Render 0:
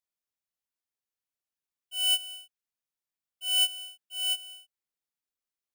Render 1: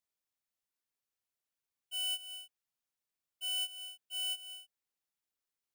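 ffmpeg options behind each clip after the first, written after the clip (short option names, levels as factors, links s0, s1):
-af "acompressor=threshold=0.0126:ratio=4"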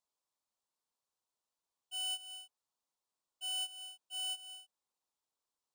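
-af "equalizer=f=250:t=o:w=1:g=3,equalizer=f=500:t=o:w=1:g=5,equalizer=f=1000:t=o:w=1:g=12,equalizer=f=2000:t=o:w=1:g=-7,equalizer=f=4000:t=o:w=1:g=5,equalizer=f=8000:t=o:w=1:g=7,equalizer=f=16000:t=o:w=1:g=-7,volume=0.631"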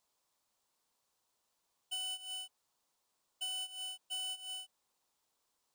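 -af "acompressor=threshold=0.00355:ratio=6,volume=3.16"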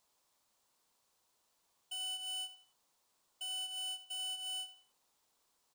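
-af "alimiter=level_in=5.96:limit=0.0631:level=0:latency=1:release=60,volume=0.168,aecho=1:1:88|176|264:0.211|0.0676|0.0216,volume=1.5"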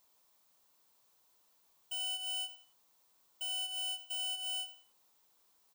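-af "aexciter=amount=1.6:drive=7.1:freq=12000,volume=1.33"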